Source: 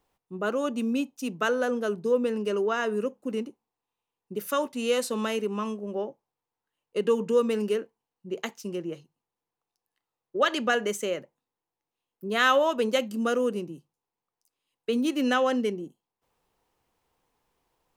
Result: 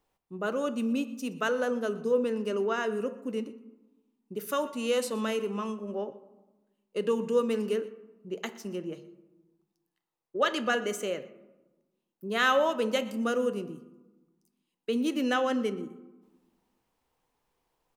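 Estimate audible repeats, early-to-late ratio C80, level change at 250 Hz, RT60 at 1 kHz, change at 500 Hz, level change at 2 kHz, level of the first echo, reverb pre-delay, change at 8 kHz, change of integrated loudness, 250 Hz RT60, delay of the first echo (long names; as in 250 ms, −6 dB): 1, 15.5 dB, −2.0 dB, 1.1 s, −2.5 dB, −2.5 dB, −21.0 dB, 3 ms, −3.0 dB, −2.5 dB, 1.4 s, 121 ms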